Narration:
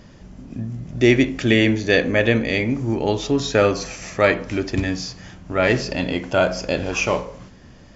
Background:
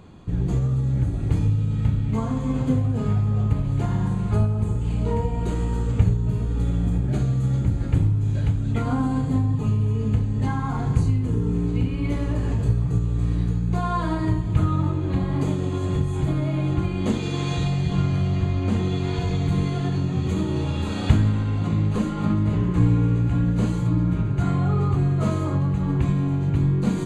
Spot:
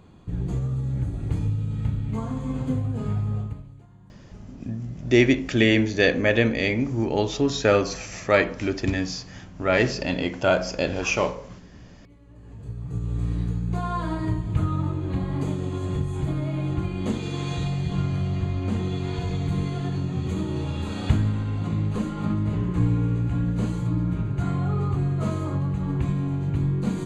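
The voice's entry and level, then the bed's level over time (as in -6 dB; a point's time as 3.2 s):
4.10 s, -2.5 dB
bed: 3.35 s -4.5 dB
3.86 s -28 dB
12.21 s -28 dB
13.11 s -3.5 dB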